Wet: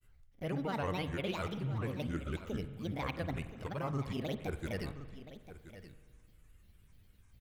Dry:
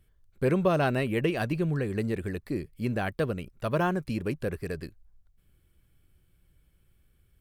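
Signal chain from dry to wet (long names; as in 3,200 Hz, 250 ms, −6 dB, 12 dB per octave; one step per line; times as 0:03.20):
parametric band 380 Hz −4.5 dB 1.5 octaves
reversed playback
downward compressor 6 to 1, threshold −37 dBFS, peak gain reduction 14.5 dB
reversed playback
granular cloud, grains 20 per second, spray 20 ms, pitch spread up and down by 7 semitones
single-tap delay 1,025 ms −14 dB
spring reverb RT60 1.7 s, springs 43 ms, chirp 20 ms, DRR 11.5 dB
level +3.5 dB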